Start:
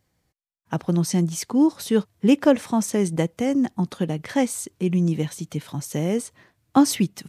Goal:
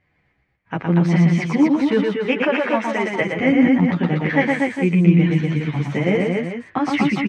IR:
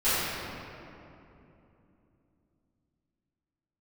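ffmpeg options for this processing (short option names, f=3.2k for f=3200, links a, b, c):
-filter_complex "[0:a]asplit=3[a][b][c];[a]afade=t=out:st=2.12:d=0.02[d];[b]highpass=430,afade=t=in:st=2.12:d=0.02,afade=t=out:st=3.2:d=0.02[e];[c]afade=t=in:st=3.2:d=0.02[f];[d][e][f]amix=inputs=3:normalize=0,alimiter=limit=-14dB:level=0:latency=1:release=95,lowpass=f=2.2k:t=q:w=3.3,aecho=1:1:115|239|407:0.708|0.668|0.355,asplit=2[g][h];[h]adelay=10.2,afreqshift=-0.72[i];[g][i]amix=inputs=2:normalize=1,volume=6.5dB"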